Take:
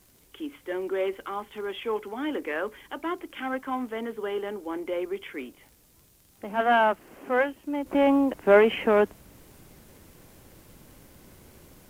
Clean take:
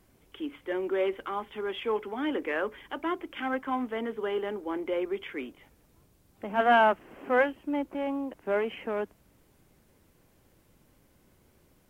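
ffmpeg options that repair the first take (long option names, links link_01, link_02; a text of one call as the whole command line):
ffmpeg -i in.wav -af "adeclick=threshold=4,agate=range=-21dB:threshold=-49dB,asetnsamples=nb_out_samples=441:pad=0,asendcmd='7.86 volume volume -11dB',volume=0dB" out.wav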